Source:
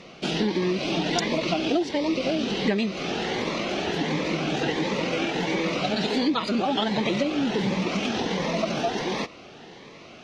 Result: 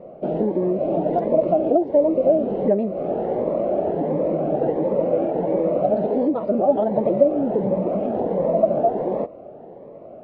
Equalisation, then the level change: synth low-pass 600 Hz, resonance Q 4.9; 0.0 dB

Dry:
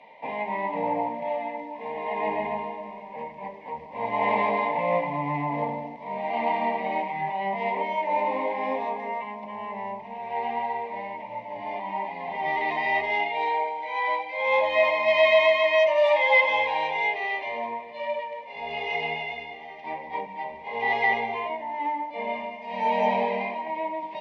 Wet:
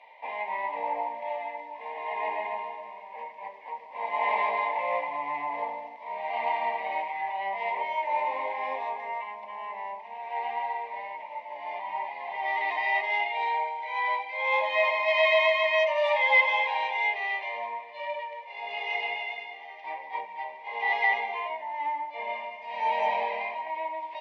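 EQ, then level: HPF 770 Hz 12 dB/oct; high shelf 4900 Hz -5 dB; 0.0 dB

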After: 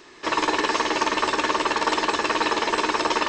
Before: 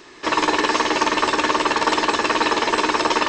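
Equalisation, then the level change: notches 60/120/180/240/300 Hz; -3.5 dB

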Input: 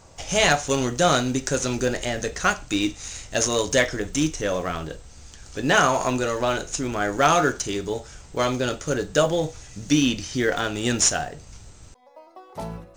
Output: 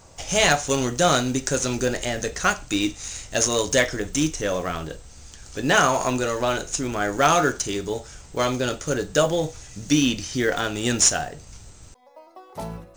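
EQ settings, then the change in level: high shelf 9200 Hz +7 dB; 0.0 dB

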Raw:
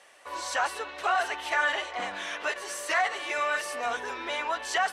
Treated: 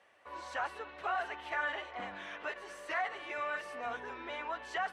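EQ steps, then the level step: HPF 47 Hz; tone controls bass +8 dB, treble -14 dB; -8.5 dB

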